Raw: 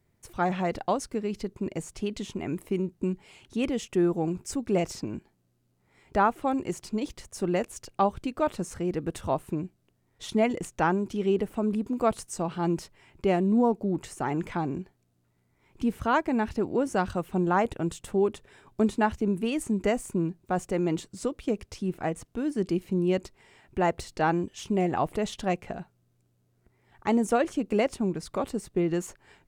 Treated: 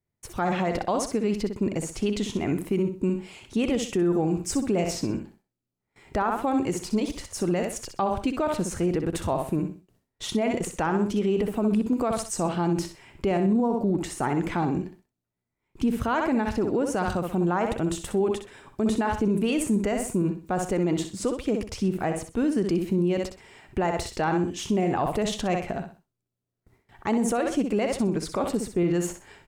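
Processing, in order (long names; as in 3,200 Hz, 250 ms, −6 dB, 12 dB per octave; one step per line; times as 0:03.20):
noise gate with hold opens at −53 dBFS
repeating echo 63 ms, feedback 29%, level −8.5 dB
brickwall limiter −22 dBFS, peak gain reduction 11.5 dB
level +6 dB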